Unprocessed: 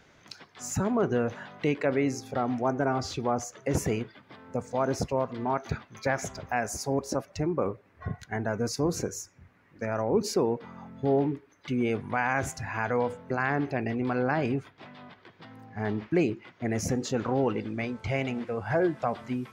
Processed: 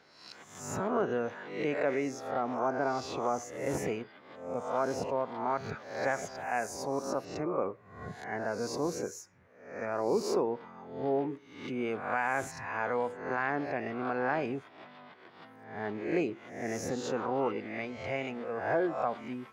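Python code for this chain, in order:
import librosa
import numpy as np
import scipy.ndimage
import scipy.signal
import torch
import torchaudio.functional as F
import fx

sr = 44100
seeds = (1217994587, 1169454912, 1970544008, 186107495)

y = fx.spec_swells(x, sr, rise_s=0.66)
y = fx.highpass(y, sr, hz=510.0, slope=6)
y = fx.high_shelf(y, sr, hz=2300.0, db=-10.0)
y = y * librosa.db_to_amplitude(-1.0)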